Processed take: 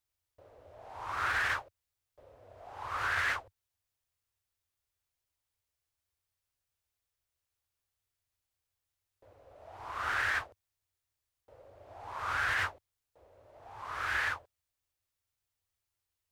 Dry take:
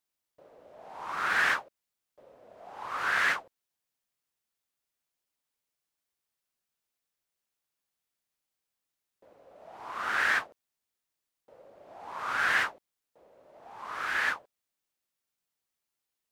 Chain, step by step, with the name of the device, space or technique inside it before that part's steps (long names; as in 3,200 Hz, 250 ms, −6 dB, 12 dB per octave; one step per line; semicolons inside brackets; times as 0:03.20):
car stereo with a boomy subwoofer (low shelf with overshoot 130 Hz +11 dB, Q 3; brickwall limiter −20.5 dBFS, peak gain reduction 7 dB)
level −1.5 dB